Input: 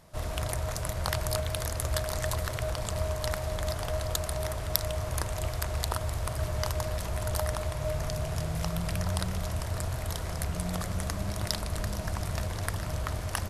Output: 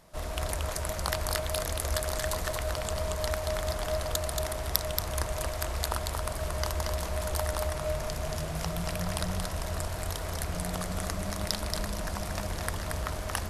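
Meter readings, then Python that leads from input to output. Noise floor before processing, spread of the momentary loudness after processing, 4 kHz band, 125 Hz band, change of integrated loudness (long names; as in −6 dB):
−36 dBFS, 4 LU, +1.5 dB, −3.0 dB, 0.0 dB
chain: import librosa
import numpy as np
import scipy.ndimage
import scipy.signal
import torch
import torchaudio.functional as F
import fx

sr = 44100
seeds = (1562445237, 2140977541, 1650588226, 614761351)

p1 = fx.peak_eq(x, sr, hz=110.0, db=-12.5, octaves=0.57)
y = p1 + fx.echo_single(p1, sr, ms=229, db=-4.0, dry=0)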